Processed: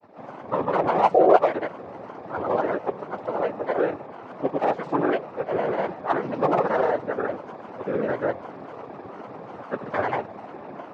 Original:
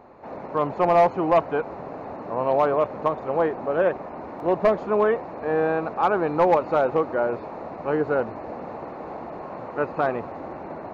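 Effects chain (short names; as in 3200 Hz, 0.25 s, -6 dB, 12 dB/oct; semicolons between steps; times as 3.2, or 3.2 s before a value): noise vocoder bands 12; grains, pitch spread up and down by 3 st; painted sound noise, 1.14–1.37, 320–760 Hz -14 dBFS; gain -1 dB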